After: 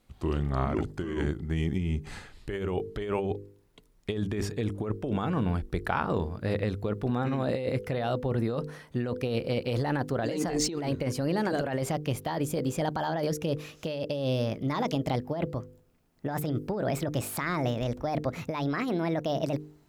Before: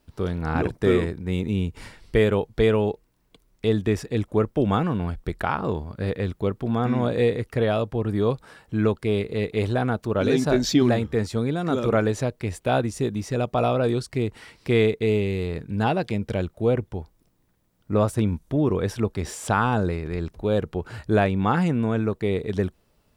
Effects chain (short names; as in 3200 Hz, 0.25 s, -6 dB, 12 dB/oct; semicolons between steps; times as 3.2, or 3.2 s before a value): speed glide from 82% -> 151%; de-hum 50.26 Hz, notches 10; negative-ratio compressor -25 dBFS, ratio -1; gain -3.5 dB